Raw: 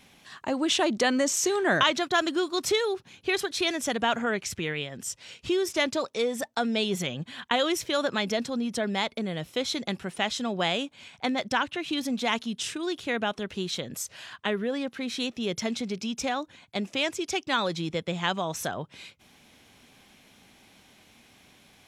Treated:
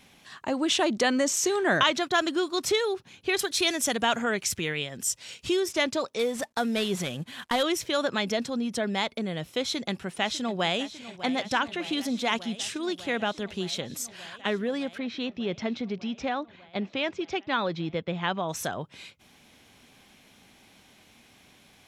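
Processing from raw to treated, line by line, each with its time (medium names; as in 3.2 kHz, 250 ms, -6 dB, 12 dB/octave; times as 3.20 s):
3.39–5.60 s: treble shelf 5.2 kHz +9.5 dB
6.19–7.63 s: CVSD coder 64 kbps
9.62–10.81 s: echo throw 600 ms, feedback 85%, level -15 dB
14.98–18.49 s: Gaussian low-pass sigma 2.1 samples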